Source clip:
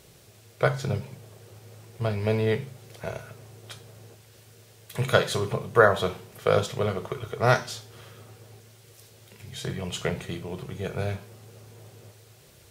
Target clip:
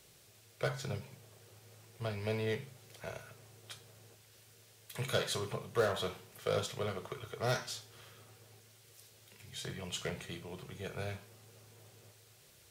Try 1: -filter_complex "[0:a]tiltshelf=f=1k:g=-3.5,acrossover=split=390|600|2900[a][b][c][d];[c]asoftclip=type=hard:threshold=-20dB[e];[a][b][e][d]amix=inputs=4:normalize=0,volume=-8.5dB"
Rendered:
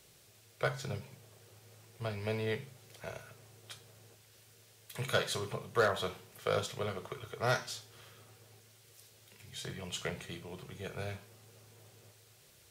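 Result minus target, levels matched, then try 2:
hard clip: distortion -6 dB
-filter_complex "[0:a]tiltshelf=f=1k:g=-3.5,acrossover=split=390|600|2900[a][b][c][d];[c]asoftclip=type=hard:threshold=-29.5dB[e];[a][b][e][d]amix=inputs=4:normalize=0,volume=-8.5dB"

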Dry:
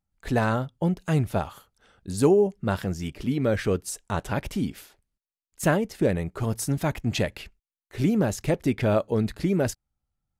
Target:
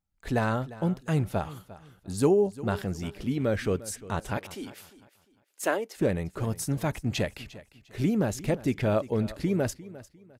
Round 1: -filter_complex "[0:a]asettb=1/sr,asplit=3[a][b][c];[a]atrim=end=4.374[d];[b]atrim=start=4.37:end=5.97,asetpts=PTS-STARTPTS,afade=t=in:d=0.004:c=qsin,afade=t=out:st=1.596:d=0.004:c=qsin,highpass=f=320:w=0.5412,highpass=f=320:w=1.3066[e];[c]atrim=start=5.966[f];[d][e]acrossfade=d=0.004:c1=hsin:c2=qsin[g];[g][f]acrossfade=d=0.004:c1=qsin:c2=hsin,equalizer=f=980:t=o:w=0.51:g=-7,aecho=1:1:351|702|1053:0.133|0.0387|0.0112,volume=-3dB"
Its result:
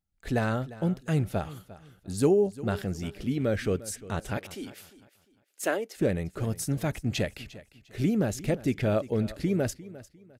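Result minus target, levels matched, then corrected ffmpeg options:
1000 Hz band -3.0 dB
-filter_complex "[0:a]asettb=1/sr,asplit=3[a][b][c];[a]atrim=end=4.374[d];[b]atrim=start=4.37:end=5.97,asetpts=PTS-STARTPTS,afade=t=in:d=0.004:c=qsin,afade=t=out:st=1.596:d=0.004:c=qsin,highpass=f=320:w=0.5412,highpass=f=320:w=1.3066[e];[c]atrim=start=5.966[f];[d][e]acrossfade=d=0.004:c1=hsin:c2=qsin[g];[g][f]acrossfade=d=0.004:c1=qsin:c2=hsin,aecho=1:1:351|702|1053:0.133|0.0387|0.0112,volume=-3dB"

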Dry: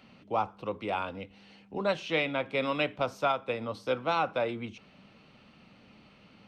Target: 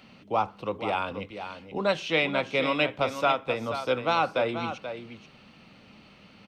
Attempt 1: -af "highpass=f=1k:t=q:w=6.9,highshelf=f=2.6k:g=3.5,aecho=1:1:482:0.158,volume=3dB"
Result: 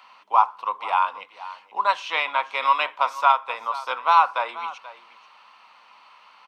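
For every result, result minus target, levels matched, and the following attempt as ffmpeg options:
1000 Hz band +4.5 dB; echo-to-direct -6.5 dB
-af "highshelf=f=2.6k:g=3.5,aecho=1:1:482:0.158,volume=3dB"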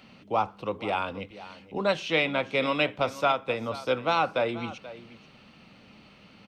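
echo-to-direct -6.5 dB
-af "highshelf=f=2.6k:g=3.5,aecho=1:1:482:0.335,volume=3dB"

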